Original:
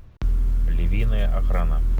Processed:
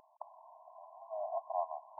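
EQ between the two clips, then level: brick-wall FIR high-pass 610 Hz; brick-wall FIR low-pass 1100 Hz; +2.0 dB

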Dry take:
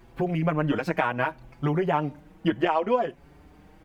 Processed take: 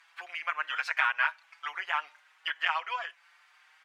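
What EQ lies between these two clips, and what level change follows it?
HPF 1300 Hz 24 dB/oct; air absorption 53 m; +5.0 dB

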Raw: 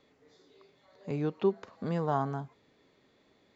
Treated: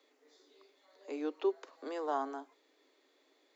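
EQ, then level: steep high-pass 270 Hz 96 dB/oct; high shelf 4900 Hz +8.5 dB; -4.0 dB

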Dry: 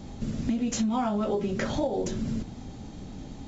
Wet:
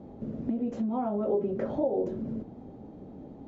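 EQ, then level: band-pass 490 Hz, Q 1.3; tilt -2 dB/oct; 0.0 dB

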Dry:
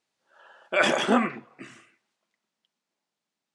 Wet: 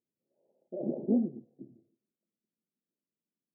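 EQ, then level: Gaussian blur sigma 23 samples; HPF 200 Hz 6 dB/oct; +2.5 dB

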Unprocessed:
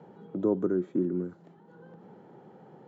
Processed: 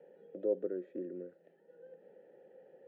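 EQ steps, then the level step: vowel filter e; +3.5 dB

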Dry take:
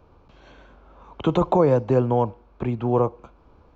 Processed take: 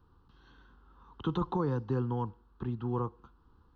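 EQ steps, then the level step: fixed phaser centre 2300 Hz, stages 6; -8.0 dB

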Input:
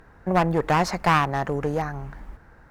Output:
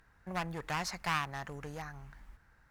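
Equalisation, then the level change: passive tone stack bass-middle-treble 5-5-5; 0.0 dB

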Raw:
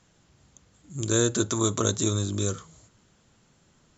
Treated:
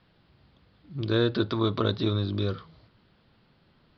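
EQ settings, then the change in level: steep low-pass 4900 Hz 96 dB/oct; 0.0 dB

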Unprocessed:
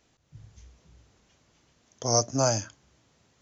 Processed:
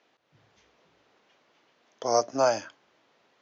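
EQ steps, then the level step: BPF 410–4900 Hz; air absorption 130 m; +4.5 dB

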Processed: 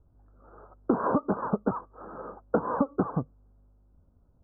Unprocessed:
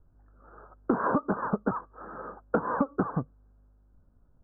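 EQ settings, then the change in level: Gaussian blur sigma 7.7 samples; tilt +2 dB/oct; bell 70 Hz +6 dB 1.2 oct; +5.0 dB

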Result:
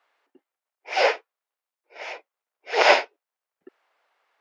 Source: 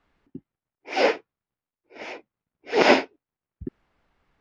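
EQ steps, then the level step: HPF 520 Hz 24 dB/oct; +2.5 dB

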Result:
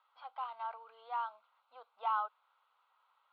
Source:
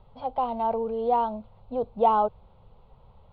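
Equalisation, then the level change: ladder high-pass 1200 Hz, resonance 60%; +2.0 dB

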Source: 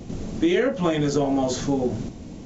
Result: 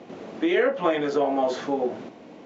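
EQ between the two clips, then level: BPF 460–2500 Hz; +3.5 dB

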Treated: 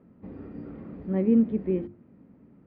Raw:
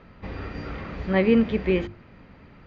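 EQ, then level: band-pass 250 Hz, Q 1.6; 0.0 dB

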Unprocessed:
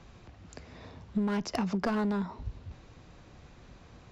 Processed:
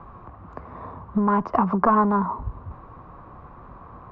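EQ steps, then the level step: synth low-pass 1100 Hz, resonance Q 5.5; +7.0 dB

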